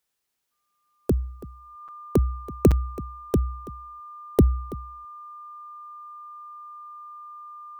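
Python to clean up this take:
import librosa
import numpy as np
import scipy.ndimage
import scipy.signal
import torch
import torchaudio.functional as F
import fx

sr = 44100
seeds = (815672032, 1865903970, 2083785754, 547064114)

y = fx.notch(x, sr, hz=1200.0, q=30.0)
y = fx.fix_interpolate(y, sr, at_s=(1.88, 2.71), length_ms=6.3)
y = fx.fix_echo_inverse(y, sr, delay_ms=330, level_db=-18.5)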